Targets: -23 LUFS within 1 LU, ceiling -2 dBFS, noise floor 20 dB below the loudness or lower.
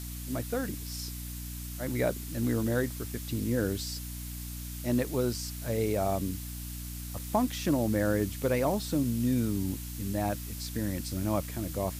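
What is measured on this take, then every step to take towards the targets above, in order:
hum 60 Hz; highest harmonic 300 Hz; hum level -38 dBFS; noise floor -39 dBFS; noise floor target -52 dBFS; loudness -32.0 LUFS; peak level -16.0 dBFS; loudness target -23.0 LUFS
-> hum notches 60/120/180/240/300 Hz; noise reduction 13 dB, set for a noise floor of -39 dBFS; trim +9 dB

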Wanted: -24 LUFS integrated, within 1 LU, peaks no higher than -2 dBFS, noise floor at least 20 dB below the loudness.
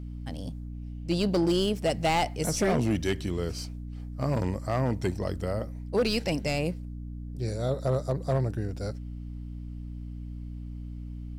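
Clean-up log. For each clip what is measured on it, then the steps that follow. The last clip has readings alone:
clipped samples 0.7%; clipping level -19.0 dBFS; hum 60 Hz; highest harmonic 300 Hz; hum level -36 dBFS; loudness -29.5 LUFS; peak level -19.0 dBFS; loudness target -24.0 LUFS
-> clip repair -19 dBFS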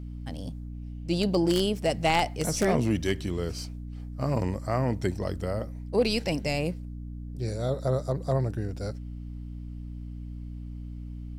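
clipped samples 0.0%; hum 60 Hz; highest harmonic 300 Hz; hum level -36 dBFS
-> hum notches 60/120/180/240/300 Hz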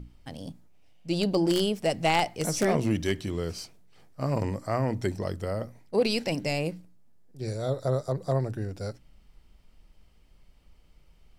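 hum not found; loudness -28.5 LUFS; peak level -9.5 dBFS; loudness target -24.0 LUFS
-> trim +4.5 dB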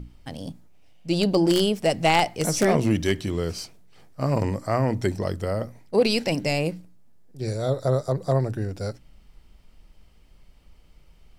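loudness -24.0 LUFS; peak level -5.0 dBFS; noise floor -54 dBFS

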